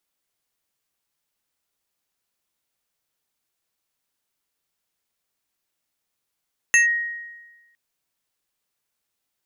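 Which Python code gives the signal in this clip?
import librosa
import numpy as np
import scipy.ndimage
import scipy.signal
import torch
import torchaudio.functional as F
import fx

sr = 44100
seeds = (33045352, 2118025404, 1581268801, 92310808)

y = fx.fm2(sr, length_s=1.01, level_db=-10.5, carrier_hz=1880.0, ratio=2.41, index=1.0, index_s=0.13, decay_s=1.23, shape='linear')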